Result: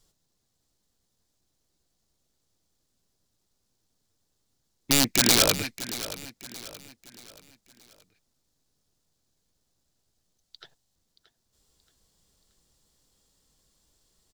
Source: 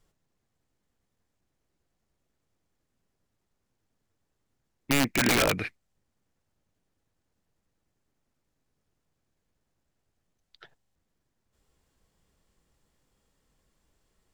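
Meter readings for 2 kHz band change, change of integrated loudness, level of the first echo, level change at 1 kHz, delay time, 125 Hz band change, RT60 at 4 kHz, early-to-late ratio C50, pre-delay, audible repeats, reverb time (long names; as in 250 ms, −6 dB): −1.5 dB, +3.0 dB, −14.5 dB, −0.5 dB, 627 ms, 0.0 dB, no reverb audible, no reverb audible, no reverb audible, 3, no reverb audible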